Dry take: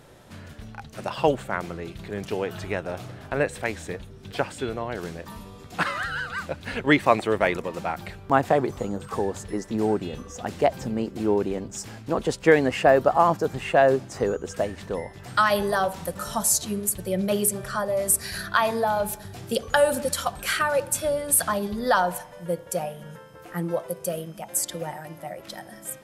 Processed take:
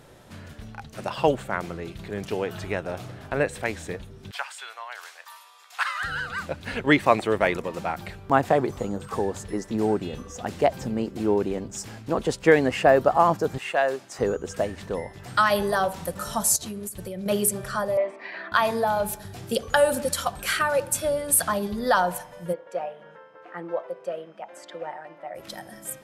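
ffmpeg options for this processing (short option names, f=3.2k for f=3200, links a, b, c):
-filter_complex "[0:a]asettb=1/sr,asplit=3[a][b][c];[a]atrim=end=4.314[d];[b]atrim=start=4.31:end=6.03,asetpts=PTS-STARTPTS,afade=t=in:d=0.004:c=qsin,afade=t=out:st=1.716:d=0.004:c=qsin,highpass=f=920:w=0.5412,highpass=f=920:w=1.3066[e];[c]atrim=start=6.026[f];[d][e]acrossfade=d=0.004:c1=hsin:c2=qsin[g];[g][f]acrossfade=d=0.004:c1=qsin:c2=hsin,asettb=1/sr,asplit=3[h][i][j];[h]atrim=end=13.584[k];[i]atrim=start=13.58:end=14.19,asetpts=PTS-STARTPTS,afade=t=in:d=0.004:c=qsin,afade=t=out:st=0.606:d=0.004:c=qsin,highpass=f=990:p=1[l];[j]atrim=start=14.186[m];[k][l]acrossfade=d=0.004:c1=hsin:c2=qsin[n];[n][m]acrossfade=d=0.004:c1=qsin:c2=hsin,asettb=1/sr,asplit=3[o][p][q];[o]atrim=end=16.564[r];[p]atrim=start=16.56:end=17.26,asetpts=PTS-STARTPTS,afade=t=in:d=0.004:c=qsin,afade=t=out:st=0.696:d=0.004:c=qsin,acompressor=threshold=-30dB:ratio=12:attack=3.2:release=140:knee=1:detection=peak[s];[q]atrim=start=17.256[t];[r][s]acrossfade=d=0.004:c1=hsin:c2=qsin[u];[u][t]acrossfade=d=0.004:c1=qsin:c2=hsin,asettb=1/sr,asplit=3[v][w][x];[v]atrim=end=17.974[y];[w]atrim=start=17.97:end=18.52,asetpts=PTS-STARTPTS,afade=t=in:d=0.004:c=qsin,afade=t=out:st=0.546:d=0.004:c=qsin,highpass=f=300:w=0.5412,highpass=f=300:w=1.3066,equalizer=f=300:t=q:w=4:g=7,equalizer=f=430:t=q:w=4:g=-6,equalizer=f=610:t=q:w=4:g=5,equalizer=f=970:t=q:w=4:g=7,equalizer=f=1.5k:t=q:w=4:g=-7,equalizer=f=2.1k:t=q:w=4:g=6,lowpass=f=2.7k:w=0.5412,lowpass=f=2.7k:w=1.3066[z];[x]atrim=start=18.516[aa];[y][z]acrossfade=d=0.004:c1=hsin:c2=qsin[ab];[ab][aa]acrossfade=d=0.004:c1=qsin:c2=hsin,asplit=3[ac][ad][ae];[ac]afade=t=out:st=22.52:d=0.02[af];[ad]highpass=420,lowpass=2.2k,afade=t=in:st=22.52:d=0.02,afade=t=out:st=25.34:d=0.02[ag];[ae]afade=t=in:st=25.34:d=0.02[ah];[af][ag][ah]amix=inputs=3:normalize=0"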